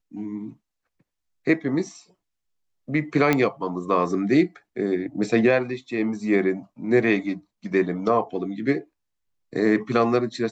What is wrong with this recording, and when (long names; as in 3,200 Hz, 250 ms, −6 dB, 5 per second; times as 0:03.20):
0:03.33: click −7 dBFS